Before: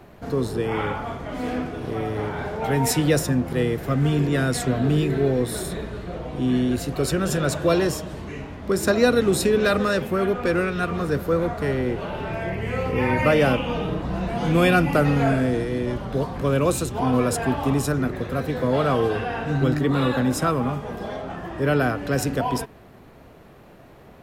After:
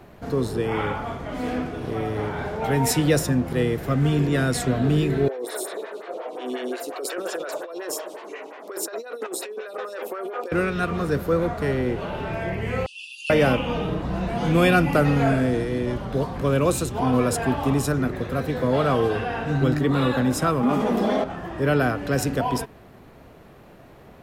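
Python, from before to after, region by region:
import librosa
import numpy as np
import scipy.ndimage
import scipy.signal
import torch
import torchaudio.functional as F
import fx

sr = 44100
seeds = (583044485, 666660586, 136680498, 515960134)

y = fx.chain(x, sr, fx.highpass(hz=390.0, slope=24),
    fx.over_compress(threshold_db=-29.0, ratio=-1.0),
    fx.stagger_phaser(hz=5.6), at=(5.28, 10.52))
y = fx.chain(y, sr, fx.brickwall_bandpass(low_hz=2500.0, high_hz=11000.0),
    fx.comb(ms=7.3, depth=0.96), at=(12.86, 13.3))
y = fx.chain(y, sr, fx.low_shelf_res(hz=160.0, db=-10.0, q=3.0),
    fx.notch(hz=1600.0, q=27.0),
    fx.env_flatten(amount_pct=70), at=(20.63, 21.24))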